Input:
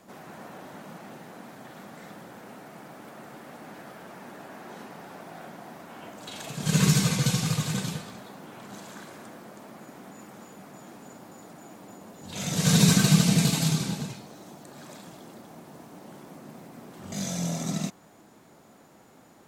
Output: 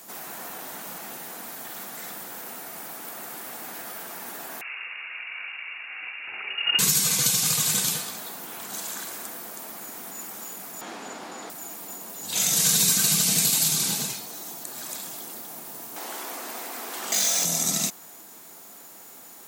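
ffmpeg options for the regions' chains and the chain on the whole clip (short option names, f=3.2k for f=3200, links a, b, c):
-filter_complex "[0:a]asettb=1/sr,asplit=3[a][b][c];[a]atrim=end=4.614[d];[b]atrim=start=4.61:end=6.79,asetpts=PTS-STARTPTS,afade=t=in:d=0.004:c=qsin,afade=t=out:st=2.176:d=0.004:c=qsin,lowshelf=f=130:g=-12,lowpass=f=2.6k:t=q:w=0.5098,lowpass=f=2.6k:t=q:w=0.6013,lowpass=f=2.6k:t=q:w=0.9,lowpass=f=2.6k:t=q:w=2.563,afreqshift=-3000[e];[c]atrim=start=6.786[f];[d][e]acrossfade=d=0.004:c1=hsin:c2=qsin[g];[g][f]acrossfade=d=0.004:c1=qsin:c2=hsin,asettb=1/sr,asplit=3[h][i][j];[h]atrim=end=10.814[k];[i]atrim=start=10.81:end=11.5,asetpts=PTS-STARTPTS,afade=t=in:d=0.004:c=qsin,afade=t=out:st=0.686:d=0.004:c=qsin,acontrast=75,highpass=190,lowpass=4k[l];[j]atrim=start=11.496[m];[k][l]acrossfade=d=0.004:c1=hsin:c2=qsin[n];[n][m]acrossfade=d=0.004:c1=qsin:c2=hsin,asettb=1/sr,asplit=3[o][p][q];[o]atrim=end=15.964[r];[p]atrim=start=15.96:end=17.45,asetpts=PTS-STARTPTS,afade=t=in:d=0.004:c=qsin,afade=t=out:st=1.486:d=0.004:c=qsin,asplit=2[s][t];[t]highpass=f=720:p=1,volume=16dB,asoftclip=type=tanh:threshold=-20dB[u];[s][u]amix=inputs=2:normalize=0,lowpass=f=3.6k:p=1,volume=-6dB,highpass=f=220:w=0.5412,highpass=f=220:w=1.3066[v];[q]atrim=start=17.446[w];[r][v]acrossfade=d=0.004:c1=hsin:c2=qsin[x];[x][w]acrossfade=d=0.004:c1=qsin:c2=hsin,aemphasis=mode=production:type=riaa,bandreject=f=570:w=12,acompressor=threshold=-24dB:ratio=4,volume=4.5dB"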